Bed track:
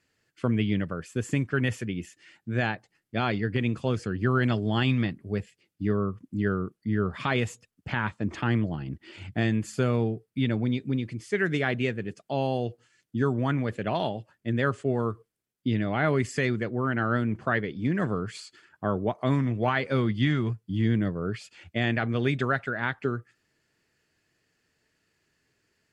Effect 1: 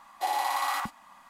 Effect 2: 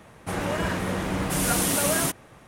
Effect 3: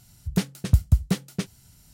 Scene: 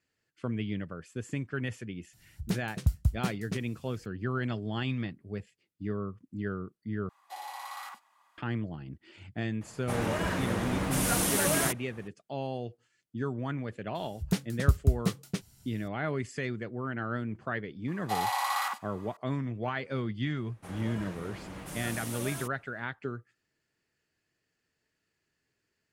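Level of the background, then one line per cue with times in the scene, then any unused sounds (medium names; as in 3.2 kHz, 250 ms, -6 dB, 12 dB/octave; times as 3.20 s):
bed track -8 dB
2.13 s: add 3 -8 dB
7.09 s: replace with 1 -11.5 dB + Bessel high-pass 700 Hz
9.61 s: add 2 -4 dB
13.95 s: add 3 -5 dB
17.88 s: add 1 -0.5 dB + high-pass 660 Hz
20.36 s: add 2 -16 dB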